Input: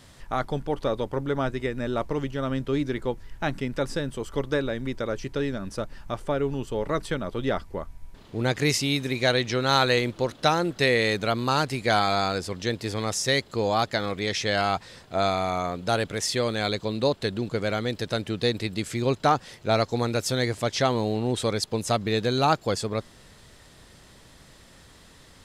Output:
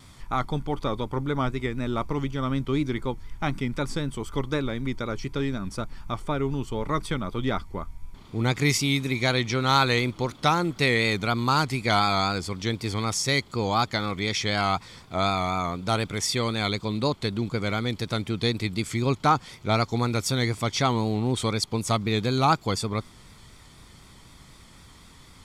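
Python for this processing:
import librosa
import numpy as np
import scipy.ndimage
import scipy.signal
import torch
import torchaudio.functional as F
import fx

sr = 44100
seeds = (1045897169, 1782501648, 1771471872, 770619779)

y = x + 0.48 * np.pad(x, (int(0.9 * sr / 1000.0), 0))[:len(x)]
y = fx.vibrato(y, sr, rate_hz=4.0, depth_cents=53.0)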